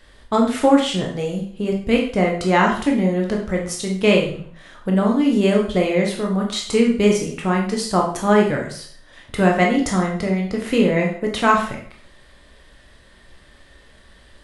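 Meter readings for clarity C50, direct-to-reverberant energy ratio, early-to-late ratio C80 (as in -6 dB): 6.0 dB, -0.5 dB, 10.0 dB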